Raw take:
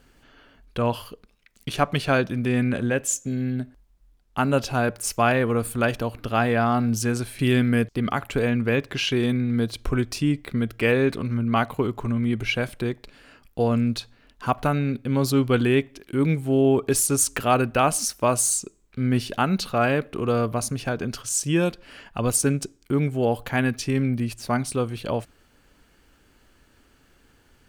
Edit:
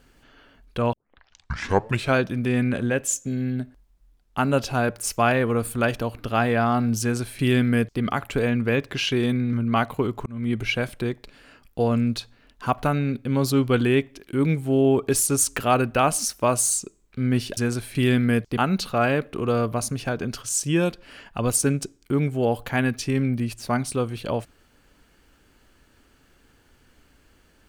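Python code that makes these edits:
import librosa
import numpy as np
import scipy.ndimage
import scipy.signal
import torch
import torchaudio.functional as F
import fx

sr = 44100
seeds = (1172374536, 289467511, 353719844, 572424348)

y = fx.edit(x, sr, fx.tape_start(start_s=0.93, length_s=1.22),
    fx.duplicate(start_s=7.01, length_s=1.0, to_s=19.37),
    fx.cut(start_s=9.53, length_s=1.8),
    fx.fade_in_span(start_s=12.06, length_s=0.26), tone=tone)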